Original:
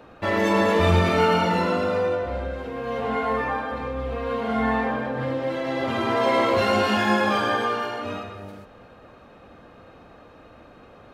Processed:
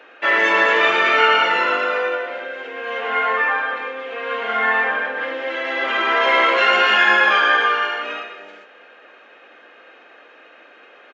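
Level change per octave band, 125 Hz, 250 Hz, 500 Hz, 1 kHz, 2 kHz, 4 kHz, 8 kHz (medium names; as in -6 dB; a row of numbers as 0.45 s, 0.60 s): under -25 dB, -9.0 dB, 0.0 dB, +5.5 dB, +12.5 dB, +9.0 dB, no reading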